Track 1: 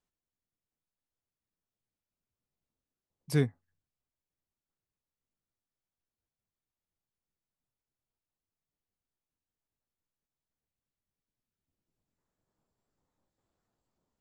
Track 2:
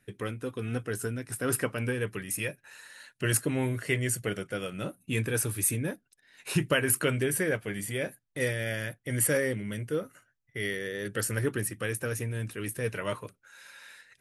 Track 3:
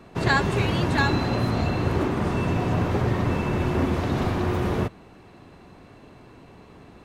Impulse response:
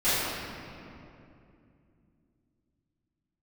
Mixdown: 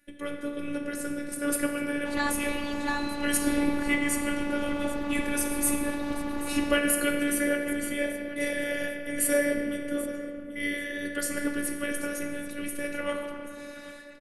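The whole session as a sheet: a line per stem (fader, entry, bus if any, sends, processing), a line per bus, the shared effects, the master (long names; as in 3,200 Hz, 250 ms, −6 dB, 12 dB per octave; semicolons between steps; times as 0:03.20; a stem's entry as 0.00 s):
−5.0 dB, 0.10 s, send −7.5 dB, no echo send, no processing
+1.0 dB, 0.00 s, send −16.5 dB, echo send −15.5 dB, no processing
−5.5 dB, 1.90 s, no send, no echo send, no processing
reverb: on, RT60 2.7 s, pre-delay 3 ms
echo: repeating echo 784 ms, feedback 29%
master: phases set to zero 289 Hz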